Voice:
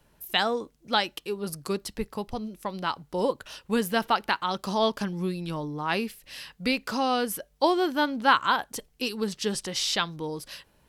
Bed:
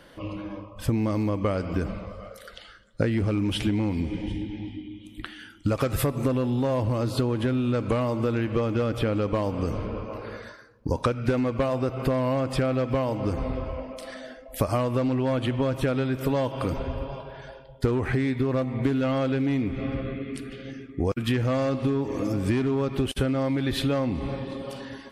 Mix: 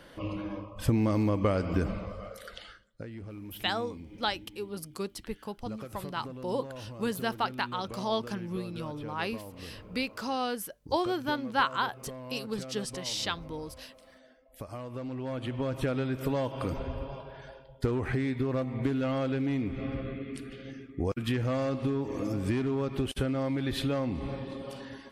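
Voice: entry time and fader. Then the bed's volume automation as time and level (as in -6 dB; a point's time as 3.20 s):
3.30 s, -6.0 dB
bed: 2.71 s -1 dB
3.01 s -18 dB
14.55 s -18 dB
15.82 s -5 dB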